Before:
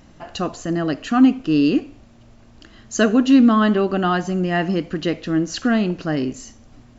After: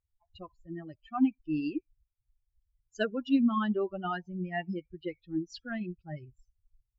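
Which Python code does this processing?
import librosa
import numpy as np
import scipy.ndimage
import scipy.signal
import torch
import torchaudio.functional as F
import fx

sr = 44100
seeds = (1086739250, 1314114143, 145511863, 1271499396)

y = fx.bin_expand(x, sr, power=3.0)
y = fx.env_lowpass(y, sr, base_hz=1700.0, full_db=-16.5)
y = F.gain(torch.from_numpy(y), -8.5).numpy()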